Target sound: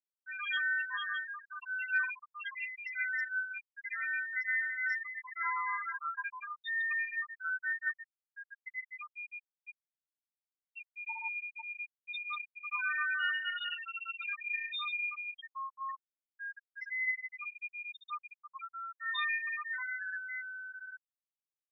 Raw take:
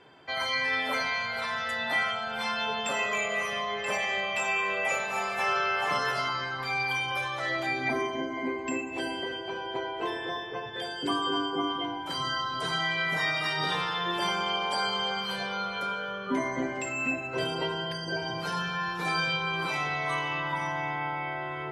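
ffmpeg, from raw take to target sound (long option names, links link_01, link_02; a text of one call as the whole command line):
ffmpeg -i in.wav -af "highpass=frequency=1400:width=0.5412,highpass=frequency=1400:width=1.3066,afftfilt=real='re*gte(hypot(re,im),0.126)':imag='im*gte(hypot(re,im),0.126)':win_size=1024:overlap=0.75,asetrate=34006,aresample=44100,atempo=1.29684,asoftclip=type=hard:threshold=-21.5dB,aresample=11025,aresample=44100,volume=-1.5dB" out.wav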